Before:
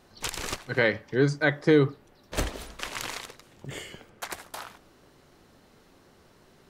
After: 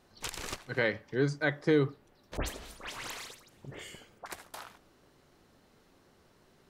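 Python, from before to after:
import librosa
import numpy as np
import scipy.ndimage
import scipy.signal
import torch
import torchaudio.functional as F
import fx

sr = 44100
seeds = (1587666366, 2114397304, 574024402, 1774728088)

y = fx.dispersion(x, sr, late='highs', ms=97.0, hz=2600.0, at=(2.37, 4.26))
y = y * librosa.db_to_amplitude(-6.0)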